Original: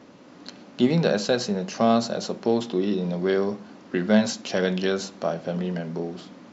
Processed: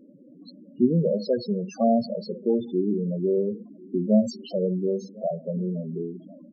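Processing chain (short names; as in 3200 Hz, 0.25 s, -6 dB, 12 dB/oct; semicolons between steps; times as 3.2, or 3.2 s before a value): echo 1.051 s -23.5 dB; loudest bins only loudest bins 8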